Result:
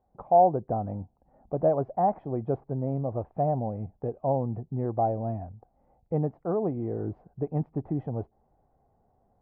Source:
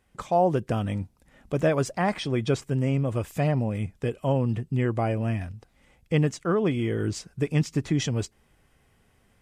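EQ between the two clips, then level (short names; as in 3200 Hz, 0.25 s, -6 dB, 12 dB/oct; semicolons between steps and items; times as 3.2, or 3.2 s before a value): ladder low-pass 840 Hz, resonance 65%; +5.0 dB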